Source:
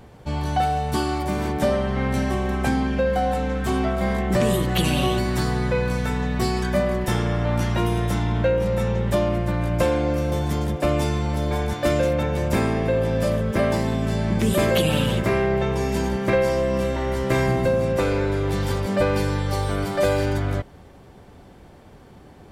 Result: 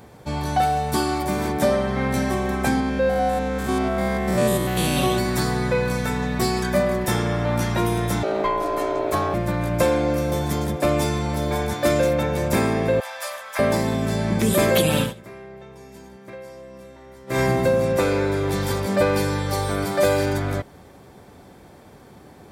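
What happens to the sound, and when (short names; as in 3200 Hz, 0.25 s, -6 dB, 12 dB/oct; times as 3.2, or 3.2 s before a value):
2.8–4.97 stepped spectrum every 0.1 s
8.23–9.34 ring modulator 500 Hz
13–13.59 inverse Chebyshev high-pass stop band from 390 Hz
15.01–17.4 dip -20.5 dB, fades 0.13 s
whole clip: HPF 120 Hz 6 dB/oct; high shelf 8700 Hz +7.5 dB; notch 2900 Hz, Q 9.9; gain +2 dB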